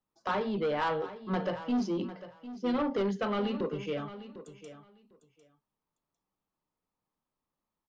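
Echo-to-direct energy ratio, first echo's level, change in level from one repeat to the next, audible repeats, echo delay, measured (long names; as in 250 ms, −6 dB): −14.0 dB, −14.0 dB, −16.0 dB, 2, 751 ms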